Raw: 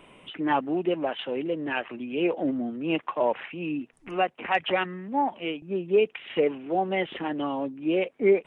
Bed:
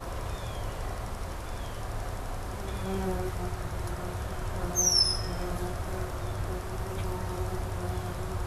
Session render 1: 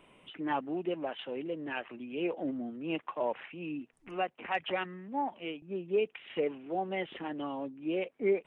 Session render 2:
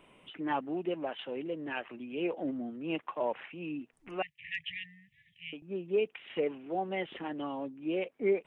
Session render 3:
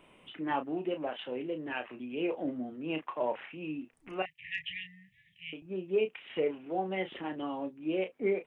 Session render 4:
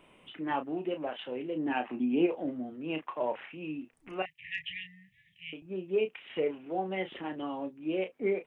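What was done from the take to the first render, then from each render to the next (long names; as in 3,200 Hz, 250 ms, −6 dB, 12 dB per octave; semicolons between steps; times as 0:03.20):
level −8 dB
0:04.22–0:05.53: linear-phase brick-wall band-stop 170–1,700 Hz
double-tracking delay 32 ms −8.5 dB
0:01.55–0:02.25: hollow resonant body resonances 250/780 Hz, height 10 dB → 13 dB, ringing for 20 ms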